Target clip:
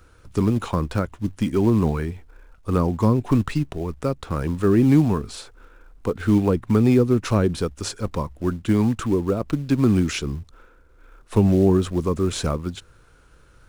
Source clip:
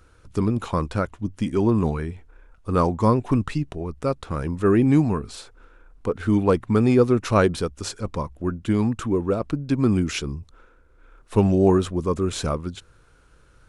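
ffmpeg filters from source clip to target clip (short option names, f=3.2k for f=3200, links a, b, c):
-filter_complex "[0:a]asplit=2[a][b];[b]acrusher=bits=4:mode=log:mix=0:aa=0.000001,volume=-5.5dB[c];[a][c]amix=inputs=2:normalize=0,acrossover=split=360[d][e];[e]acompressor=threshold=-22dB:ratio=10[f];[d][f]amix=inputs=2:normalize=0,volume=-1.5dB"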